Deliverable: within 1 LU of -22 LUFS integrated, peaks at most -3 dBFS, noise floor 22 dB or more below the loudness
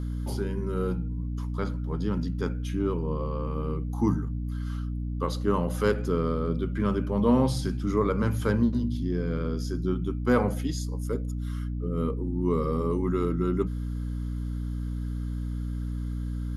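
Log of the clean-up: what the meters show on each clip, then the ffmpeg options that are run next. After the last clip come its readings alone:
hum 60 Hz; highest harmonic 300 Hz; hum level -28 dBFS; loudness -29.0 LUFS; peak level -10.0 dBFS; loudness target -22.0 LUFS
-> -af "bandreject=f=60:t=h:w=4,bandreject=f=120:t=h:w=4,bandreject=f=180:t=h:w=4,bandreject=f=240:t=h:w=4,bandreject=f=300:t=h:w=4"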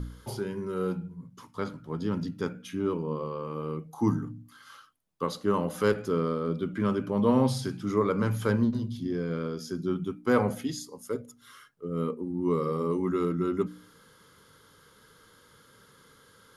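hum not found; loudness -30.0 LUFS; peak level -10.0 dBFS; loudness target -22.0 LUFS
-> -af "volume=2.51,alimiter=limit=0.708:level=0:latency=1"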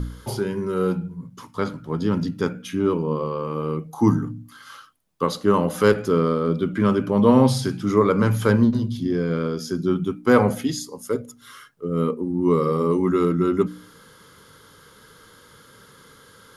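loudness -22.0 LUFS; peak level -3.0 dBFS; noise floor -51 dBFS

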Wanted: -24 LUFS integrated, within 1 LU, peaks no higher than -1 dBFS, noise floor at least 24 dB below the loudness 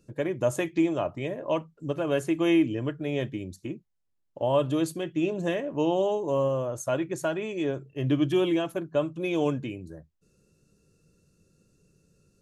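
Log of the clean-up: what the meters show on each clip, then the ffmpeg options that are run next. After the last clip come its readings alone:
loudness -28.0 LUFS; peak level -12.5 dBFS; loudness target -24.0 LUFS
-> -af "volume=1.58"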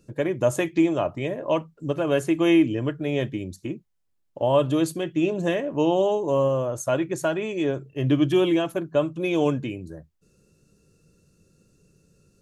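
loudness -24.0 LUFS; peak level -8.5 dBFS; noise floor -70 dBFS

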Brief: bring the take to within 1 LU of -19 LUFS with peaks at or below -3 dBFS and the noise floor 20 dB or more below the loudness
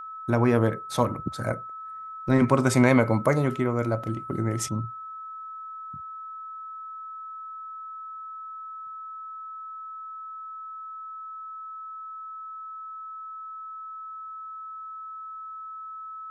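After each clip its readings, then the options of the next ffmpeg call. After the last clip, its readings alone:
steady tone 1.3 kHz; tone level -36 dBFS; loudness -29.5 LUFS; peak level -6.0 dBFS; loudness target -19.0 LUFS
-> -af "bandreject=f=1300:w=30"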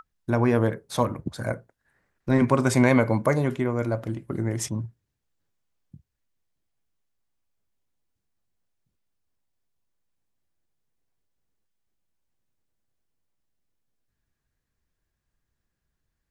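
steady tone not found; loudness -24.5 LUFS; peak level -6.0 dBFS; loudness target -19.0 LUFS
-> -af "volume=1.88,alimiter=limit=0.708:level=0:latency=1"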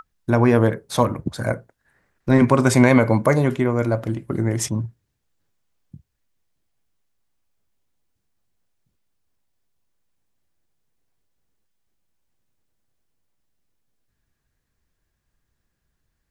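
loudness -19.5 LUFS; peak level -3.0 dBFS; noise floor -76 dBFS

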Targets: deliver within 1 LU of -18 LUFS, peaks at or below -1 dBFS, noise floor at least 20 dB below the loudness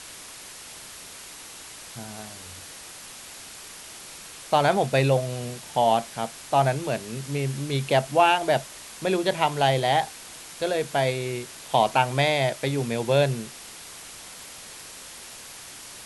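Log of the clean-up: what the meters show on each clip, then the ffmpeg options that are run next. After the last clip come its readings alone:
noise floor -43 dBFS; noise floor target -44 dBFS; loudness -24.0 LUFS; peak level -6.0 dBFS; loudness target -18.0 LUFS
-> -af "afftdn=nr=6:nf=-43"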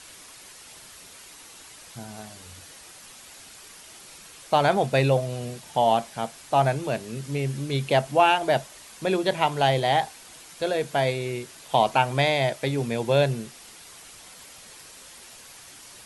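noise floor -47 dBFS; loudness -24.0 LUFS; peak level -6.0 dBFS; loudness target -18.0 LUFS
-> -af "volume=2,alimiter=limit=0.891:level=0:latency=1"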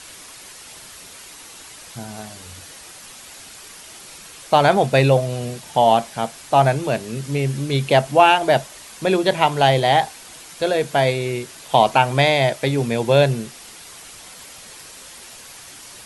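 loudness -18.0 LUFS; peak level -1.0 dBFS; noise floor -41 dBFS

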